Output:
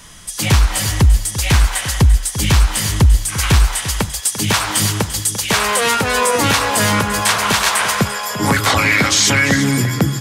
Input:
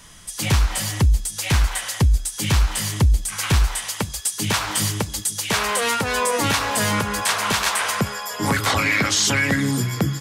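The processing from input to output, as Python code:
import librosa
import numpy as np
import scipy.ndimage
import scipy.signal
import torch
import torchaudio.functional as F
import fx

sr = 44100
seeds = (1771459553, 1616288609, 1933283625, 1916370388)

y = x + 10.0 ** (-12.5 / 20.0) * np.pad(x, (int(344 * sr / 1000.0), 0))[:len(x)]
y = y * 10.0 ** (5.5 / 20.0)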